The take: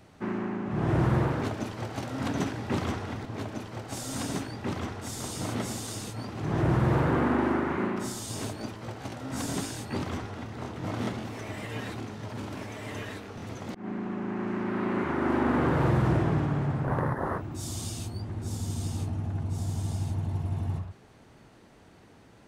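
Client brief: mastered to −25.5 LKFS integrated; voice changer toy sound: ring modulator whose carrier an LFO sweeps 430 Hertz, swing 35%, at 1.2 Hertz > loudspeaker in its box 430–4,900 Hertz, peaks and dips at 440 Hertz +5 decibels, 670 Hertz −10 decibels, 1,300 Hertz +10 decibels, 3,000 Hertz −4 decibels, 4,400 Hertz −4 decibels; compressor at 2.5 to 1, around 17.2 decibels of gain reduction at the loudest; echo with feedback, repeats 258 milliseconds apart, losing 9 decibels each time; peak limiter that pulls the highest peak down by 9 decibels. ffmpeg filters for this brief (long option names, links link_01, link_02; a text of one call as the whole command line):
ffmpeg -i in.wav -af "acompressor=threshold=-48dB:ratio=2.5,alimiter=level_in=16dB:limit=-24dB:level=0:latency=1,volume=-16dB,aecho=1:1:258|516|774|1032:0.355|0.124|0.0435|0.0152,aeval=exprs='val(0)*sin(2*PI*430*n/s+430*0.35/1.2*sin(2*PI*1.2*n/s))':channel_layout=same,highpass=430,equalizer=frequency=440:width_type=q:width=4:gain=5,equalizer=frequency=670:width_type=q:width=4:gain=-10,equalizer=frequency=1300:width_type=q:width=4:gain=10,equalizer=frequency=3000:width_type=q:width=4:gain=-4,equalizer=frequency=4400:width_type=q:width=4:gain=-4,lowpass=frequency=4900:width=0.5412,lowpass=frequency=4900:width=1.3066,volume=27dB" out.wav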